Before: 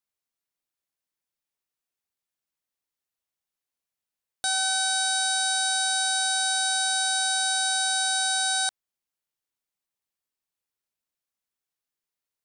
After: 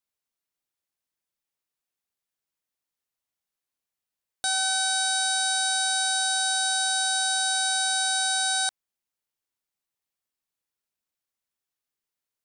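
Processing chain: 6.13–7.55 notch 2200 Hz, Q 9.8

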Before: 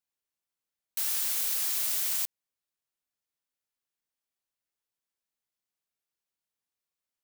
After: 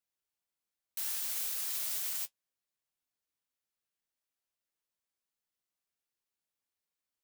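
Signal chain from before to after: limiter -24 dBFS, peak gain reduction 6.5 dB; flange 1.3 Hz, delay 8.5 ms, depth 8.3 ms, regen +54%; gain +2.5 dB

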